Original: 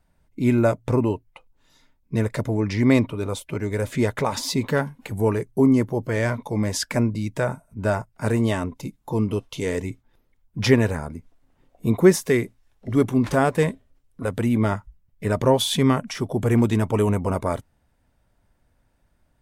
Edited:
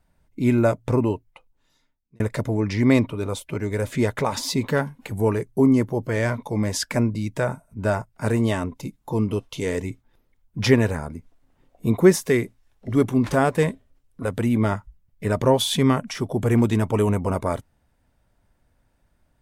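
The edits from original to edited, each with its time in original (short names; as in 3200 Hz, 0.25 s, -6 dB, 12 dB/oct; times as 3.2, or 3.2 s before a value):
1.11–2.2 fade out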